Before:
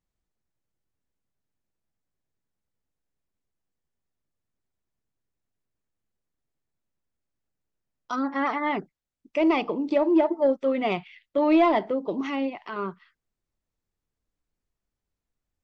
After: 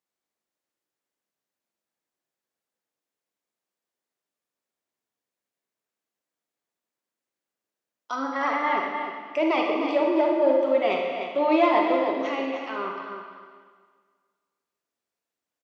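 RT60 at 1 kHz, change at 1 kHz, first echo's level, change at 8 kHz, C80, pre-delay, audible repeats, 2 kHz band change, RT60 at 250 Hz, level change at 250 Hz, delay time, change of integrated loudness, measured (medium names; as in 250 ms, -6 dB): 1.7 s, +3.0 dB, -8.0 dB, no reading, 2.5 dB, 38 ms, 1, +3.5 dB, 1.6 s, -2.5 dB, 304 ms, +1.0 dB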